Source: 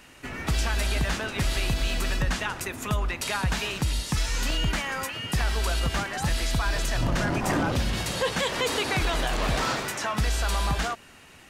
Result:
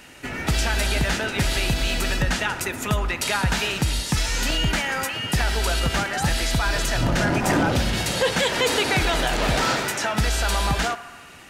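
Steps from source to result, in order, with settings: bass shelf 69 Hz -5.5 dB; band-stop 1.1 kHz, Q 7.6; on a send: band-passed feedback delay 69 ms, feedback 77%, band-pass 1.2 kHz, level -13.5 dB; on the sum: trim +5.5 dB

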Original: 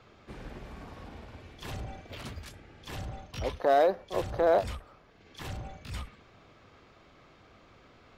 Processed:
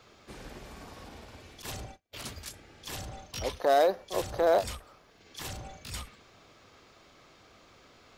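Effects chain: tone controls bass -4 dB, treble +11 dB; 1.62–2.16 s: gate -41 dBFS, range -36 dB

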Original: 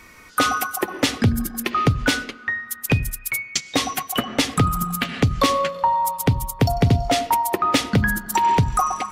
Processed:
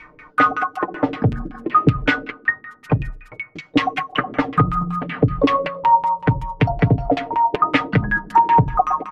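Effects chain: LFO low-pass saw down 5.3 Hz 300–2800 Hz; comb 6.6 ms, depth 64%; trim -1 dB

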